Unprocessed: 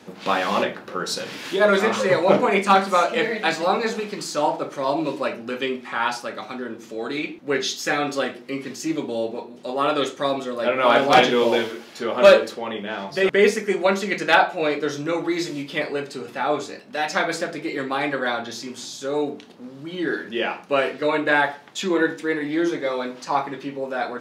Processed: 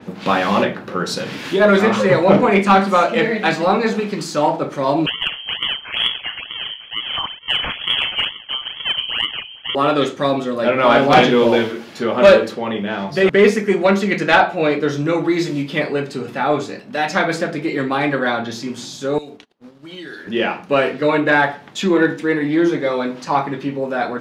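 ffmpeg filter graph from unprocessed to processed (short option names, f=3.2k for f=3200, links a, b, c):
-filter_complex "[0:a]asettb=1/sr,asplit=3[a][b][c];[a]atrim=end=5.064[d];[b]atrim=start=5.06:end=9.75,asetpts=PTS-STARTPTS,afade=t=in:d=0.004:c=qsin,afade=t=out:st=4.686:d=0.004:c=qsin,acrusher=samples=28:mix=1:aa=0.000001:lfo=1:lforange=44.8:lforate=2.2,lowpass=f=2.9k:t=q:w=0.5098,lowpass=f=2.9k:t=q:w=0.6013,lowpass=f=2.9k:t=q:w=0.9,lowpass=f=2.9k:t=q:w=2.563,afreqshift=-3400[e];[c]atrim=start=9.746[f];[d][e]acrossfade=d=0.004:c1=hsin:c2=qsin[g];[g][f]acrossfade=d=0.004:c1=qsin:c2=hsin,asettb=1/sr,asplit=3[h][i][j];[h]atrim=end=19.184[k];[i]atrim=start=19.18:end=20.27,asetpts=PTS-STARTPTS,afade=t=in:d=0.004:c=qsin,afade=t=out:st=1.086:d=0.004:c=qsin,acrossover=split=150|3000[l][m][n];[m]acompressor=threshold=-35dB:ratio=6:attack=3.2:release=140:knee=2.83:detection=peak[o];[l][o][n]amix=inputs=3:normalize=0,equalizer=f=150:w=0.65:g=-13.5,agate=range=-27dB:threshold=-47dB:ratio=16:release=100:detection=peak[p];[j]atrim=start=20.266[q];[k][p]acrossfade=d=0.004:c1=hsin:c2=qsin[r];[r][q]acrossfade=d=0.004:c1=qsin:c2=hsin,bass=f=250:g=8,treble=f=4k:g=-4,acontrast=50,adynamicequalizer=threshold=0.0282:dfrequency=4400:dqfactor=0.7:tfrequency=4400:tqfactor=0.7:attack=5:release=100:ratio=0.375:range=1.5:mode=cutabove:tftype=highshelf,volume=-1dB"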